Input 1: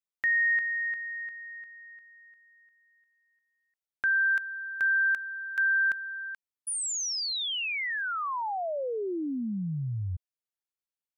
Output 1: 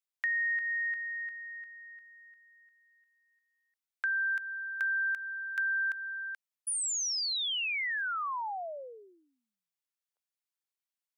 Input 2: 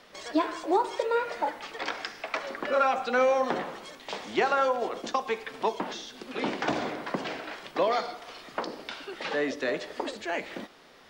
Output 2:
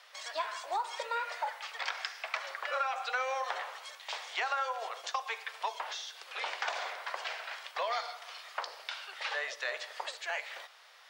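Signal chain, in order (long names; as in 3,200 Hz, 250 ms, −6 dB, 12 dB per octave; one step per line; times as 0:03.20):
Bessel high-pass filter 1,000 Hz, order 8
downward compressor, threshold −29 dBFS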